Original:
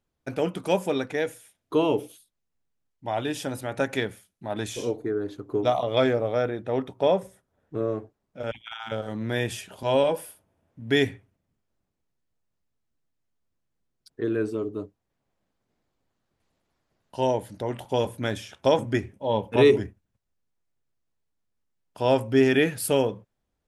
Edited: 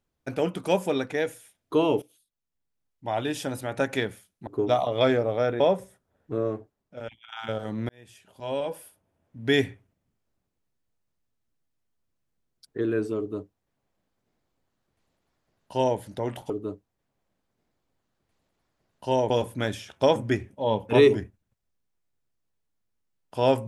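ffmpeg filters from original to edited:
-filter_complex "[0:a]asplit=8[a][b][c][d][e][f][g][h];[a]atrim=end=2.02,asetpts=PTS-STARTPTS,afade=t=out:st=2.016:d=0.004:c=hsin:silence=0.133352[i];[b]atrim=start=2.02:end=4.472,asetpts=PTS-STARTPTS,afade=t=in:d=1.06:silence=0.133352[j];[c]atrim=start=5.428:end=6.562[k];[d]atrim=start=7.028:end=8.75,asetpts=PTS-STARTPTS,afade=t=out:st=0.872:d=0.85:silence=0.266073[l];[e]atrim=start=8.75:end=9.32,asetpts=PTS-STARTPTS,afade=t=in:d=0.004:c=hsin:silence=0.266073,afade=t=out:st=0.566:d=0.004:c=hsin[m];[f]atrim=start=9.32:end=17.932,asetpts=PTS-STARTPTS,afade=t=in:d=1.72[n];[g]atrim=start=14.608:end=17.412[o];[h]atrim=start=17.928[p];[i][j]concat=n=2:v=0:a=1[q];[q][k]acrossfade=d=0.004:c1=hsin:c2=hsin[r];[l][m][n]concat=n=3:v=0:a=1[s];[r][s]acrossfade=d=0.004:c1=hsin:c2=hsin[t];[t][o]acrossfade=d=0.004:c1=hsin:c2=hsin[u];[u][p]acrossfade=d=0.004:c1=hsin:c2=hsin"

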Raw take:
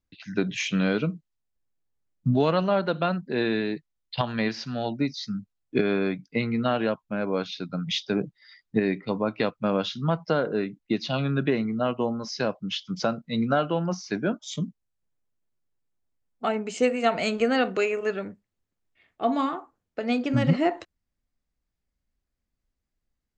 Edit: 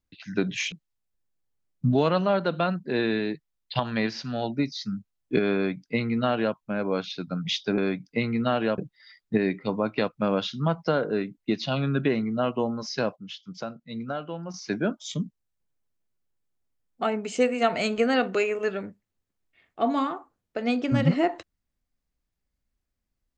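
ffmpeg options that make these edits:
-filter_complex "[0:a]asplit=6[a][b][c][d][e][f];[a]atrim=end=0.722[g];[b]atrim=start=1.138:end=8.202[h];[c]atrim=start=5.968:end=6.972[i];[d]atrim=start=8.198:end=12.582[j];[e]atrim=start=12.578:end=13.962,asetpts=PTS-STARTPTS,volume=-9dB[k];[f]atrim=start=13.958[l];[g][h]acrossfade=d=0.004:c1=hsin:c2=hsin[m];[m][i]acrossfade=d=0.004:c1=hsin:c2=hsin[n];[n][j]acrossfade=d=0.004:c1=hsin:c2=hsin[o];[o][k]acrossfade=d=0.004:c1=hsin:c2=hsin[p];[p][l]acrossfade=d=0.004:c1=hsin:c2=hsin"

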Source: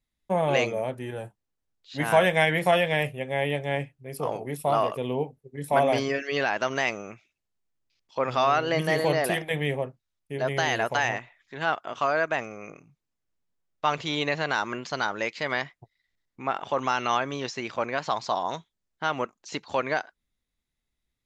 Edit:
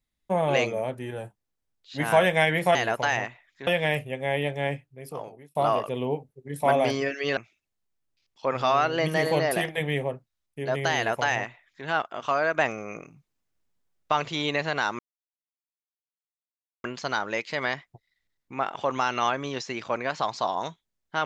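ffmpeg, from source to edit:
-filter_complex "[0:a]asplit=8[a][b][c][d][e][f][g][h];[a]atrim=end=2.752[i];[b]atrim=start=10.668:end=11.592[j];[c]atrim=start=2.748:end=4.63,asetpts=PTS-STARTPTS,afade=t=out:st=1.072:d=0.81[k];[d]atrim=start=4.63:end=6.452,asetpts=PTS-STARTPTS,afade=t=in:d=0.004:c=hsin[l];[e]atrim=start=7.098:end=12.272[m];[f]atrim=start=12.268:end=13.852,asetpts=PTS-STARTPTS,volume=4dB[n];[g]atrim=start=13.848:end=14.72,asetpts=PTS-STARTPTS,afade=t=out:st=0.868:d=0.004:c=hsin,apad=pad_dur=1.85[o];[h]atrim=start=14.72,asetpts=PTS-STARTPTS,afade=t=in:d=0.004:c=hsin[p];[i][j]acrossfade=d=0.004:c1=hsin:c2=hsin[q];[k][l]concat=n=2:v=0:a=1[r];[q][r]acrossfade=d=0.004:c1=hsin:c2=hsin[s];[s][m]acrossfade=d=0.004:c1=hsin:c2=hsin[t];[t][n]acrossfade=d=0.004:c1=hsin:c2=hsin[u];[o][p]concat=n=2:v=0:a=1[v];[u][v]acrossfade=d=0.004:c1=hsin:c2=hsin"

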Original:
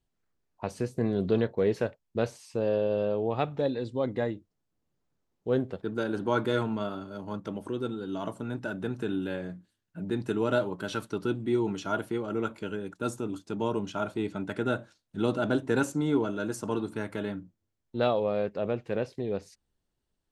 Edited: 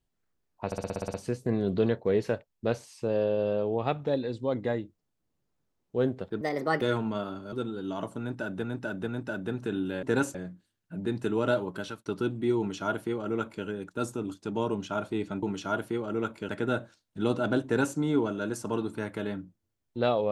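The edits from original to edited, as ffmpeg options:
-filter_complex "[0:a]asplit=19[a][b][c][d][e][f][g][h][i][j][k][l][m][n][o][p][q][r][s];[a]atrim=end=0.722[t];[b]atrim=start=0.658:end=0.722[u];[c]atrim=start=0.658:end=0.722[v];[d]atrim=start=0.658:end=0.722[w];[e]atrim=start=0.658:end=0.722[x];[f]atrim=start=0.658:end=0.722[y];[g]atrim=start=0.658:end=0.722[z];[h]atrim=start=0.658:end=0.722[aa];[i]atrim=start=0.658:end=5.934[ab];[j]atrim=start=5.93:end=6.47,asetpts=PTS-STARTPTS,asetrate=58653,aresample=44100,atrim=end_sample=17905,asetpts=PTS-STARTPTS[ac];[k]atrim=start=6.466:end=7.182[ad];[l]atrim=start=7.768:end=8.882[ae];[m]atrim=start=8.438:end=8.882[af];[n]atrim=start=8.438:end=9.392[ag];[o]atrim=start=15.628:end=15.952[ah];[p]atrim=start=9.388:end=11.1,asetpts=PTS-STARTPTS,afade=t=out:st=1.422:d=0.29[ai];[q]atrim=start=11.1:end=14.472,asetpts=PTS-STARTPTS,afade=t=in:d=0.004:c=hsin[aj];[r]atrim=start=11.628:end=12.692[ak];[s]atrim=start=14.468[al];[t][u]acrossfade=d=0.004:c1=hsin:c2=hsin[am];[am][v]acrossfade=d=0.004:c1=hsin:c2=hsin[an];[an][w]acrossfade=d=0.004:c1=hsin:c2=hsin[ao];[ao][x]acrossfade=d=0.004:c1=hsin:c2=hsin[ap];[ap][y]acrossfade=d=0.004:c1=hsin:c2=hsin[aq];[aq][z]acrossfade=d=0.004:c1=hsin:c2=hsin[ar];[ar][aa]acrossfade=d=0.004:c1=hsin:c2=hsin[as];[as][ab]acrossfade=d=0.004:c1=hsin:c2=hsin[at];[at][ac]acrossfade=d=0.004:c1=hsin:c2=hsin[au];[au][ad]acrossfade=d=0.004:c1=hsin:c2=hsin[av];[av][ae]acrossfade=d=0.004:c1=hsin:c2=hsin[aw];[aw][af]acrossfade=d=0.004:c1=hsin:c2=hsin[ax];[ax][ag]acrossfade=d=0.004:c1=hsin:c2=hsin[ay];[ay][ah]acrossfade=d=0.004:c1=hsin:c2=hsin[az];[ai][aj]concat=n=2:v=0:a=1[ba];[az][ba]acrossfade=d=0.004:c1=hsin:c2=hsin[bb];[bb][ak]acrossfade=d=0.004:c1=hsin:c2=hsin[bc];[bc][al]acrossfade=d=0.004:c1=hsin:c2=hsin"

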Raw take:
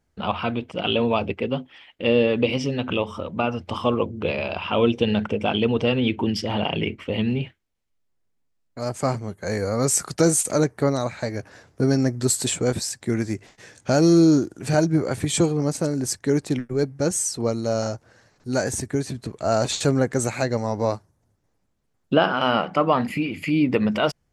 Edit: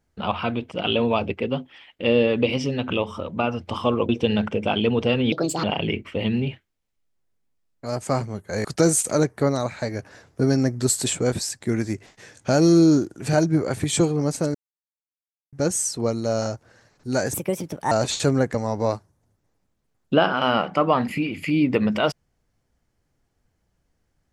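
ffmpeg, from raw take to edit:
-filter_complex "[0:a]asplit=10[a][b][c][d][e][f][g][h][i][j];[a]atrim=end=4.092[k];[b]atrim=start=4.868:end=6.104[l];[c]atrim=start=6.1:end=6.57,asetpts=PTS-STARTPTS,asetrate=65709,aresample=44100[m];[d]atrim=start=6.566:end=9.582[n];[e]atrim=start=10.048:end=15.95,asetpts=PTS-STARTPTS,afade=t=out:st=5.898:d=0.004:c=hsin[o];[f]atrim=start=15.95:end=16.93,asetpts=PTS-STARTPTS,volume=0[p];[g]atrim=start=16.93:end=18.744,asetpts=PTS-STARTPTS,afade=t=in:d=0.004:c=hsin[q];[h]atrim=start=18.74:end=19.52,asetpts=PTS-STARTPTS,asetrate=59535,aresample=44100[r];[i]atrim=start=19.516:end=20.152[s];[j]atrim=start=20.538[t];[k][l]acrossfade=d=0.004:c1=hsin:c2=hsin[u];[u][m]acrossfade=d=0.004:c1=hsin:c2=hsin[v];[v][n]acrossfade=d=0.004:c1=hsin:c2=hsin[w];[o][p][q]concat=n=3:v=0:a=1[x];[w][x]acrossfade=d=0.004:c1=hsin:c2=hsin[y];[y][r]acrossfade=d=0.004:c1=hsin:c2=hsin[z];[z][s]acrossfade=d=0.004:c1=hsin:c2=hsin[aa];[aa][t]acrossfade=d=0.004:c1=hsin:c2=hsin"

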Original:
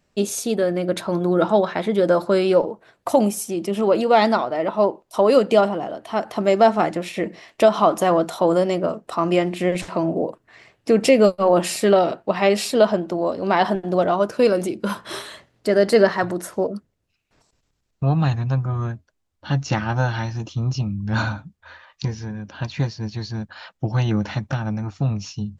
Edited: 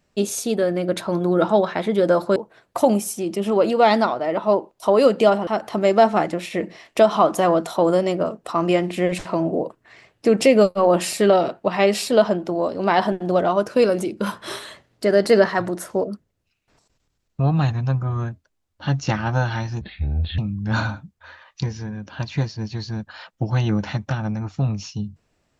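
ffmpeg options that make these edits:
-filter_complex "[0:a]asplit=5[a][b][c][d][e];[a]atrim=end=2.362[f];[b]atrim=start=2.668:end=5.782[g];[c]atrim=start=6.098:end=20.444[h];[d]atrim=start=20.44:end=20.8,asetpts=PTS-STARTPTS,asetrate=27783,aresample=44100[i];[e]atrim=start=20.796[j];[f][g]acrossfade=d=0.004:c1=hsin:c2=hsin[k];[k][h]acrossfade=d=0.004:c1=hsin:c2=hsin[l];[l][i]acrossfade=d=0.004:c1=hsin:c2=hsin[m];[m][j]acrossfade=d=0.004:c1=hsin:c2=hsin"

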